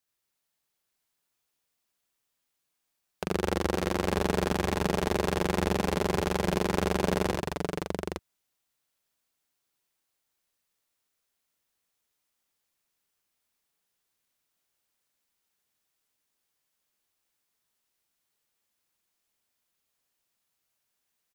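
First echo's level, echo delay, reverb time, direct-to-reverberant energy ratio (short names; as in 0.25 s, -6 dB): -3.5 dB, 75 ms, none, none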